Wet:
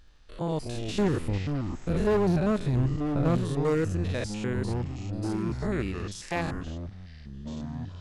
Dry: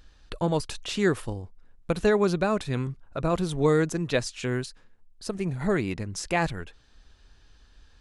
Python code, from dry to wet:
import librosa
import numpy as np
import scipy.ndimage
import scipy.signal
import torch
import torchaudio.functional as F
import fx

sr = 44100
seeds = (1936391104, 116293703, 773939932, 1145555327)

y = fx.spec_steps(x, sr, hold_ms=100)
y = fx.low_shelf(y, sr, hz=420.0, db=9.5, at=(0.77, 3.37))
y = np.clip(10.0 ** (18.0 / 20.0) * y, -1.0, 1.0) / 10.0 ** (18.0 / 20.0)
y = fx.echo_pitch(y, sr, ms=80, semitones=-6, count=2, db_per_echo=-6.0)
y = y * 10.0 ** (-2.5 / 20.0)